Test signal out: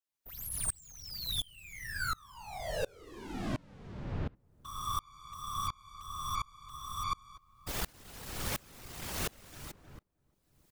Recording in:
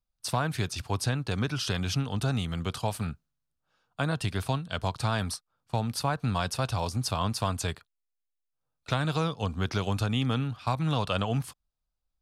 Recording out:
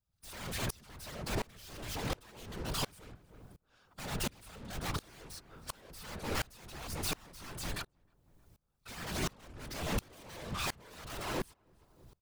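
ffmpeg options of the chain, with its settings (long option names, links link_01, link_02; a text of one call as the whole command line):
ffmpeg -i in.wav -filter_complex "[0:a]asplit=2[link_01][link_02];[link_02]acompressor=threshold=-40dB:ratio=6,volume=0.5dB[link_03];[link_01][link_03]amix=inputs=2:normalize=0,aeval=exprs='0.224*sin(PI/2*7.08*val(0)/0.224)':channel_layout=same,aeval=exprs='(tanh(63.1*val(0)+0.8)-tanh(0.8))/63.1':channel_layout=same,afftfilt=real='hypot(re,im)*cos(2*PI*random(0))':imag='hypot(re,im)*sin(2*PI*random(1))':win_size=512:overlap=0.75,asplit=2[link_04][link_05];[link_05]adelay=313,lowpass=frequency=1100:poles=1,volume=-16dB,asplit=2[link_06][link_07];[link_07]adelay=313,lowpass=frequency=1100:poles=1,volume=0.45,asplit=2[link_08][link_09];[link_09]adelay=313,lowpass=frequency=1100:poles=1,volume=0.45,asplit=2[link_10][link_11];[link_11]adelay=313,lowpass=frequency=1100:poles=1,volume=0.45[link_12];[link_06][link_08][link_10][link_12]amix=inputs=4:normalize=0[link_13];[link_04][link_13]amix=inputs=2:normalize=0,aeval=exprs='val(0)*pow(10,-29*if(lt(mod(-1.4*n/s,1),2*abs(-1.4)/1000),1-mod(-1.4*n/s,1)/(2*abs(-1.4)/1000),(mod(-1.4*n/s,1)-2*abs(-1.4)/1000)/(1-2*abs(-1.4)/1000))/20)':channel_layout=same,volume=10dB" out.wav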